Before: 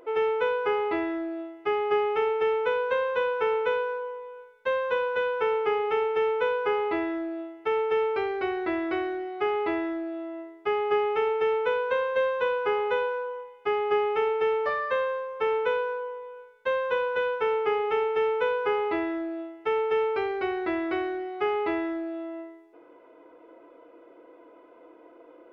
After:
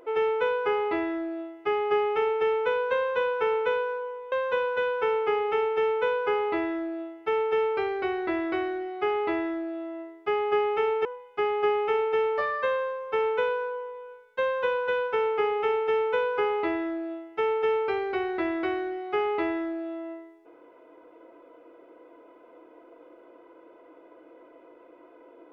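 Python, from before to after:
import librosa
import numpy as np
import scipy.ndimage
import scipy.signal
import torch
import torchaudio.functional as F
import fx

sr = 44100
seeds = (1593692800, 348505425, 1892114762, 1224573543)

y = fx.edit(x, sr, fx.cut(start_s=4.32, length_s=0.39),
    fx.cut(start_s=11.44, length_s=1.89), tone=tone)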